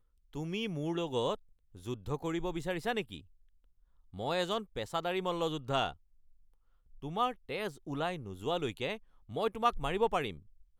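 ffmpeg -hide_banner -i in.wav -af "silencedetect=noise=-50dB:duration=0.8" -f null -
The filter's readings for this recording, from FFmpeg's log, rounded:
silence_start: 3.21
silence_end: 4.13 | silence_duration: 0.92
silence_start: 5.95
silence_end: 6.94 | silence_duration: 0.99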